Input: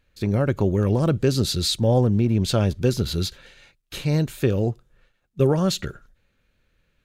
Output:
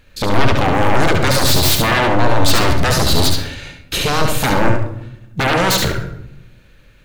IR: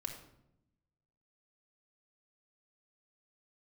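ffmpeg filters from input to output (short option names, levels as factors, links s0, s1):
-filter_complex "[0:a]aeval=exprs='0.447*sin(PI/2*7.94*val(0)/0.447)':c=same,asplit=2[s0][s1];[1:a]atrim=start_sample=2205,adelay=70[s2];[s1][s2]afir=irnorm=-1:irlink=0,volume=0.794[s3];[s0][s3]amix=inputs=2:normalize=0,volume=0.501"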